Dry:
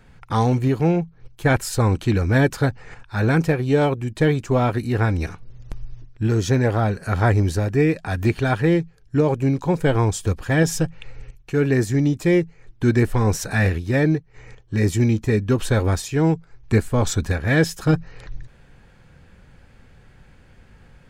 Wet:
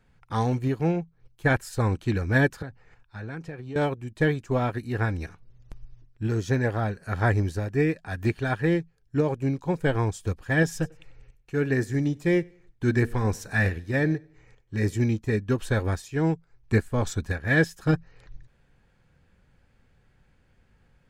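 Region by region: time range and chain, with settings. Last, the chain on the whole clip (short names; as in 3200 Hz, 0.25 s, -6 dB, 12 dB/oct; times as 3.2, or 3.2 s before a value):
2.62–3.76 compressor 8:1, threshold -22 dBFS + air absorption 51 m + three-band expander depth 40%
10.73–14.96 de-hum 234 Hz, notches 2 + feedback echo 95 ms, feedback 40%, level -20 dB
whole clip: dynamic EQ 1700 Hz, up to +6 dB, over -44 dBFS, Q 5.9; upward expander 1.5:1, over -30 dBFS; gain -4 dB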